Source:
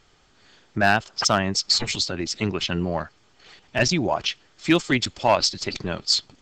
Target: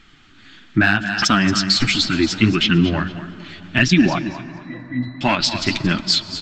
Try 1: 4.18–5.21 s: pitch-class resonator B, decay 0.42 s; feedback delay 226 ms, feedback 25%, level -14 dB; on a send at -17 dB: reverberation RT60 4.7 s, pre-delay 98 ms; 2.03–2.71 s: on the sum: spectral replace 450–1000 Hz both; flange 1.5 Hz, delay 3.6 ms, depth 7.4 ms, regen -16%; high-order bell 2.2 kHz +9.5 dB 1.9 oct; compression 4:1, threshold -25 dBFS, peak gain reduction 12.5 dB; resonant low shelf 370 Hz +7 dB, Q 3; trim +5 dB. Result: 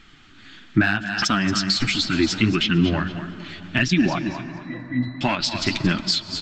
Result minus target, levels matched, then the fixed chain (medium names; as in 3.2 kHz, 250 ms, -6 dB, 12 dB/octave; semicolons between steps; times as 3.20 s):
compression: peak gain reduction +5.5 dB
4.18–5.21 s: pitch-class resonator B, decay 0.42 s; feedback delay 226 ms, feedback 25%, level -14 dB; on a send at -17 dB: reverberation RT60 4.7 s, pre-delay 98 ms; 2.03–2.71 s: on the sum: spectral replace 450–1000 Hz both; flange 1.5 Hz, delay 3.6 ms, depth 7.4 ms, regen -16%; high-order bell 2.2 kHz +9.5 dB 1.9 oct; compression 4:1, threshold -18 dBFS, peak gain reduction 7 dB; resonant low shelf 370 Hz +7 dB, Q 3; trim +5 dB